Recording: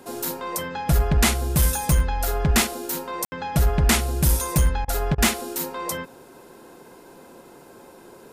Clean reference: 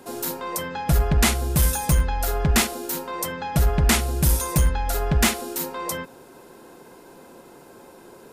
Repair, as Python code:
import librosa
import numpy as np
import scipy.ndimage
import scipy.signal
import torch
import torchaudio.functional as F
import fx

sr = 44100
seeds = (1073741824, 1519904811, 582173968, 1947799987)

y = fx.fix_ambience(x, sr, seeds[0], print_start_s=7.41, print_end_s=7.91, start_s=3.25, end_s=3.32)
y = fx.fix_interpolate(y, sr, at_s=(4.85, 5.15), length_ms=29.0)